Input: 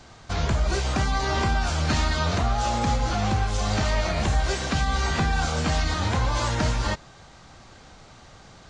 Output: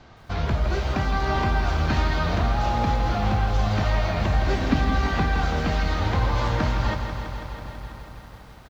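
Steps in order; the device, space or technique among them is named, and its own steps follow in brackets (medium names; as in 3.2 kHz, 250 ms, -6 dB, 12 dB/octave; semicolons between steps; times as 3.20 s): shout across a valley (distance through air 180 m; echo from a far wall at 180 m, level -19 dB); 4.47–4.97 s: peaking EQ 260 Hz +12 dB 0.6 oct; bit-crushed delay 164 ms, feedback 80%, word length 9-bit, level -8.5 dB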